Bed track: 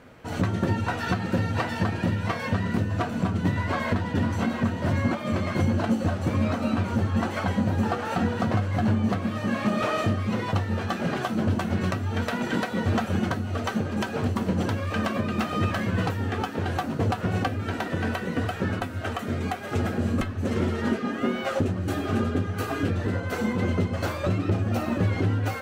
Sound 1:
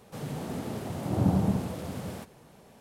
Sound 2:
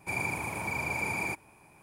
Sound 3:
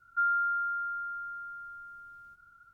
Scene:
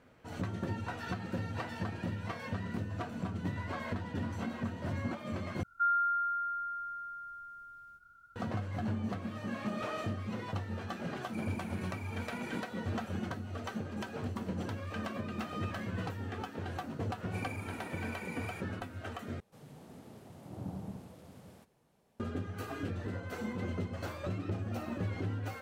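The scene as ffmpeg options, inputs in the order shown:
-filter_complex "[2:a]asplit=2[a][b];[0:a]volume=-12dB,asplit=3[c][d][e];[c]atrim=end=5.634[f];[3:a]atrim=end=2.73,asetpts=PTS-STARTPTS,volume=-1.5dB[g];[d]atrim=start=8.356:end=19.404[h];[1:a]atrim=end=2.8,asetpts=PTS-STARTPTS,volume=-17dB[i];[e]atrim=start=22.196[j];[a]atrim=end=1.82,asetpts=PTS-STARTPTS,volume=-17dB,afade=t=in:d=0.004:c=hsin,afade=t=out:st=1.816:d=0.004:c=hsin,adelay=11260[k];[b]atrim=end=1.82,asetpts=PTS-STARTPTS,volume=-14dB,afade=t=in:d=0.004:c=hsin,afade=t=out:st=1.816:d=0.004:c=hsin,adelay=17260[l];[f][g]acrossfade=d=0.004:c1=hsin:c2=hsin[m];[m][h]acrossfade=d=0.004:c1=hsin:c2=hsin[n];[n][i]acrossfade=d=0.004:c1=hsin:c2=hsin[o];[o][j]acrossfade=d=0.004:c1=hsin:c2=hsin[p];[p][k][l]amix=inputs=3:normalize=0"

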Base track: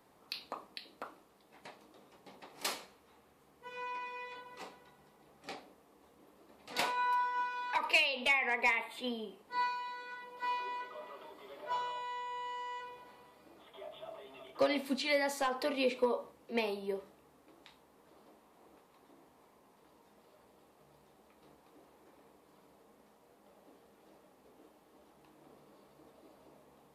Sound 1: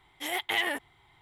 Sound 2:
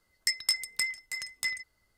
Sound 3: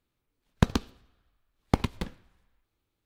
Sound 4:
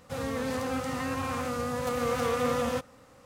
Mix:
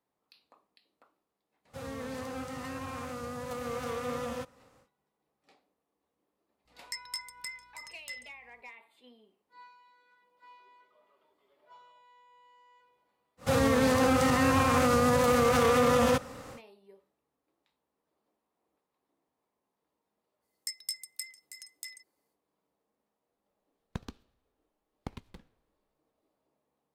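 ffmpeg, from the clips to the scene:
-filter_complex "[4:a]asplit=2[a][b];[2:a]asplit=2[c][d];[0:a]volume=-19.5dB[e];[c]aeval=exprs='val(0)+0.000794*(sin(2*PI*60*n/s)+sin(2*PI*2*60*n/s)/2+sin(2*PI*3*60*n/s)/3+sin(2*PI*4*60*n/s)/4+sin(2*PI*5*60*n/s)/5)':c=same[f];[b]alimiter=level_in=25dB:limit=-1dB:release=50:level=0:latency=1[g];[d]aderivative[h];[a]atrim=end=3.25,asetpts=PTS-STARTPTS,volume=-7.5dB,afade=t=in:d=0.1,afade=t=out:st=3.15:d=0.1,adelay=1640[i];[f]atrim=end=1.97,asetpts=PTS-STARTPTS,volume=-11dB,afade=t=in:d=0.004:c=hsin,afade=t=out:st=1.966:d=0.004:c=hsin,adelay=6650[j];[g]atrim=end=3.25,asetpts=PTS-STARTPTS,volume=-15dB,afade=t=in:d=0.1,afade=t=out:st=3.15:d=0.1,adelay=13370[k];[h]atrim=end=1.97,asetpts=PTS-STARTPTS,volume=-7dB,afade=t=in:d=0.05,afade=t=out:st=1.92:d=0.05,adelay=20400[l];[3:a]atrim=end=3.05,asetpts=PTS-STARTPTS,volume=-17dB,afade=t=in:d=0.004:c=hsin,afade=t=out:st=3.046:d=0.004:c=hsin,adelay=23330[m];[e][i][j][k][l][m]amix=inputs=6:normalize=0"

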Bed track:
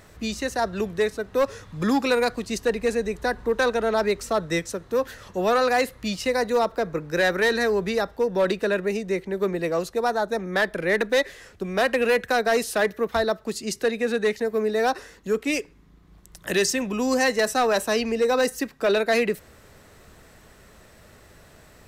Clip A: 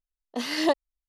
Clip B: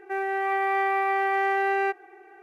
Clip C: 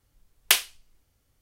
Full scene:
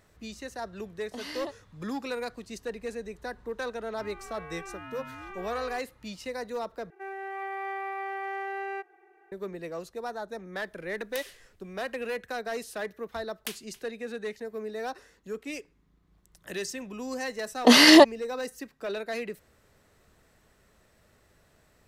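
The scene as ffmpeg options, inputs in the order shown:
-filter_complex "[1:a]asplit=2[a][b];[2:a]asplit=2[c][d];[3:a]asplit=2[e][f];[0:a]volume=-12.5dB[g];[a]acompressor=threshold=-27dB:ratio=6:attack=3.2:release=140:knee=1:detection=peak[h];[c]aeval=exprs='val(0)*sin(2*PI*430*n/s+430*0.25/0.89*sin(2*PI*0.89*n/s))':c=same[i];[e]acompressor=threshold=-31dB:ratio=6:attack=3.2:release=140:knee=1:detection=peak[j];[f]aecho=1:1:274:0.1[k];[b]alimiter=level_in=20dB:limit=-1dB:release=50:level=0:latency=1[l];[g]asplit=2[m][n];[m]atrim=end=6.904[o];[d]atrim=end=2.42,asetpts=PTS-STARTPTS,volume=-10.5dB[p];[n]atrim=start=9.316[q];[h]atrim=end=1.08,asetpts=PTS-STARTPTS,volume=-7.5dB,afade=t=in:d=0.004:c=hsin,afade=t=out:st=1.076:d=0.004:c=hsin,adelay=780[r];[i]atrim=end=2.42,asetpts=PTS-STARTPTS,volume=-16dB,afade=t=in:d=0.004:c=hsin,afade=t=out:st=2.416:d=0.004:c=hsin,adelay=3880[s];[j]atrim=end=1.41,asetpts=PTS-STARTPTS,volume=-6dB,afade=t=in:d=0.004:c=hsin,afade=t=out:st=1.406:d=0.004:c=hsin,adelay=10650[t];[k]atrim=end=1.41,asetpts=PTS-STARTPTS,volume=-17.5dB,afade=t=in:d=0.004:c=hsin,afade=t=out:st=1.406:d=0.004:c=hsin,adelay=12960[u];[l]atrim=end=1.08,asetpts=PTS-STARTPTS,volume=-3.5dB,afade=t=in:d=0.004:c=hsin,afade=t=out:st=1.076:d=0.004:c=hsin,adelay=17310[v];[o][p]acrossfade=d=0.004:c1=hsin:c2=hsin[w];[w][q]acrossfade=d=0.004:c1=hsin:c2=hsin[x];[x][r][s][t][u][v]amix=inputs=6:normalize=0"

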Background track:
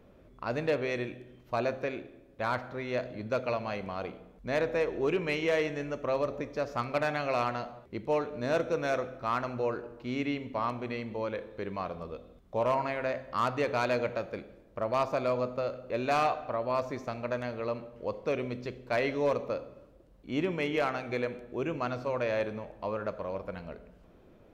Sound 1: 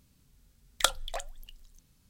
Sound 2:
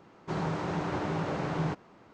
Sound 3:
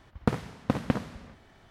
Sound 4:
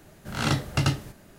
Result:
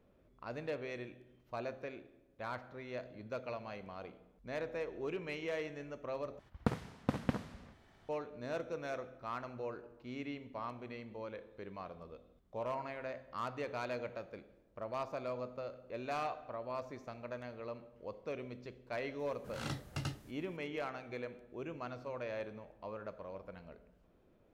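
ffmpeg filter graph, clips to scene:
-filter_complex "[0:a]volume=-11dB,asplit=2[a][b];[a]atrim=end=6.394[c];[3:a]atrim=end=1.7,asetpts=PTS-STARTPTS,volume=-7.5dB[d];[b]atrim=start=8.086[e];[4:a]atrim=end=1.38,asetpts=PTS-STARTPTS,volume=-16dB,afade=t=in:d=0.004:c=hsin,afade=t=out:st=1.376:d=0.004:c=hsin,adelay=19190[f];[c][d]acrossfade=d=0.004:c1=hsin:c2=hsin[g];[g][e]acrossfade=d=0.004:c1=hsin:c2=hsin[h];[h][f]amix=inputs=2:normalize=0"

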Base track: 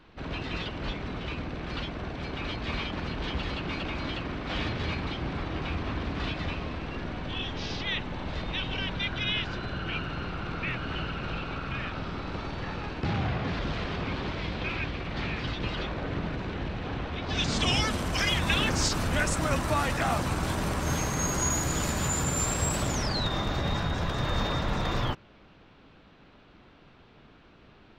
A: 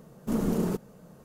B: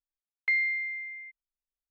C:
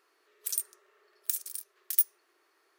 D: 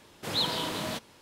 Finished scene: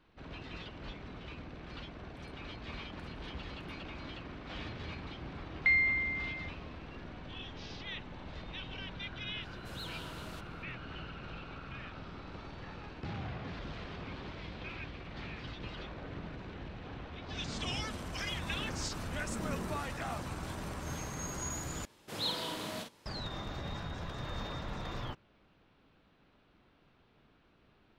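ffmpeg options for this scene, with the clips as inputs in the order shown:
-filter_complex "[4:a]asplit=2[a][b];[0:a]volume=-11.5dB[c];[3:a]lowpass=1.3k[d];[a]asoftclip=type=tanh:threshold=-25dB[e];[b]asplit=2[f][g];[g]adelay=48,volume=-5dB[h];[f][h]amix=inputs=2:normalize=0[i];[c]asplit=2[j][k];[j]atrim=end=21.854[l];[i]atrim=end=1.21,asetpts=PTS-STARTPTS,volume=-8dB[m];[k]atrim=start=23.056[n];[d]atrim=end=2.78,asetpts=PTS-STARTPTS,volume=-7dB,afade=t=in:d=0.004:c=hsin,afade=t=out:st=2.776:d=0.004:c=hsin,adelay=1700[o];[2:a]atrim=end=1.9,asetpts=PTS-STARTPTS,volume=-0.5dB,afade=t=in:d=0.004:c=hsin,afade=t=out:st=1.896:d=0.004:c=hsin,adelay=5180[p];[e]atrim=end=1.21,asetpts=PTS-STARTPTS,volume=-15dB,afade=t=in:d=0.004:c=hsin,afade=t=out:st=1.206:d=0.004:c=hsin,adelay=9420[q];[1:a]atrim=end=1.24,asetpts=PTS-STARTPTS,volume=-14.5dB,afade=t=in:d=0.004:c=hsin,afade=t=out:st=1.236:d=0.004:c=hsin,adelay=19010[r];[l][m]acrossfade=d=0.004:c1=hsin:c2=hsin[s];[s][n]acrossfade=d=0.004:c1=hsin:c2=hsin[t];[t][o][p][q][r]amix=inputs=5:normalize=0"

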